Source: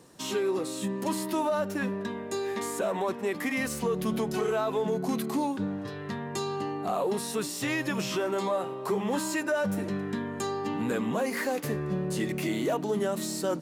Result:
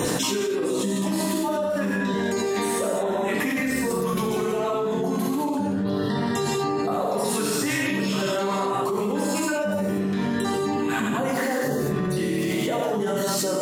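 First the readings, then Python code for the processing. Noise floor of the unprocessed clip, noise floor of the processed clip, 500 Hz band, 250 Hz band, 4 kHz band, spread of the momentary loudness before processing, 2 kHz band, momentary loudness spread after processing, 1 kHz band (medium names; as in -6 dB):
-38 dBFS, -26 dBFS, +5.0 dB, +6.0 dB, +7.0 dB, 4 LU, +5.5 dB, 1 LU, +5.5 dB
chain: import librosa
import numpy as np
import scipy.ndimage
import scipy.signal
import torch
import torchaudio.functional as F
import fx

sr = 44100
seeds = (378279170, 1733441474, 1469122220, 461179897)

y = fx.spec_dropout(x, sr, seeds[0], share_pct=28)
y = fx.rev_gated(y, sr, seeds[1], gate_ms=260, shape='flat', drr_db=-4.5)
y = fx.env_flatten(y, sr, amount_pct=100)
y = F.gain(torch.from_numpy(y), -7.0).numpy()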